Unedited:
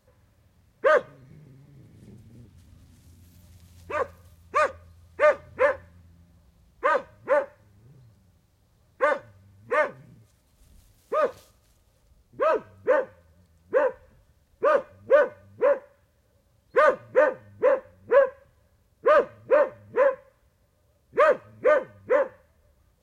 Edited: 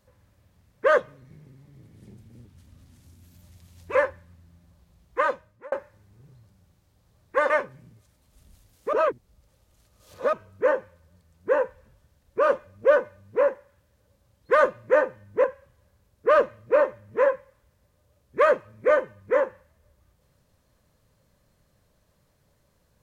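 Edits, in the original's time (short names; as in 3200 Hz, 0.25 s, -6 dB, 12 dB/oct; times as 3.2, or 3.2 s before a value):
3.95–5.61 cut
6.85–7.38 fade out
9.16–9.75 cut
11.18–12.58 reverse
17.69–18.23 cut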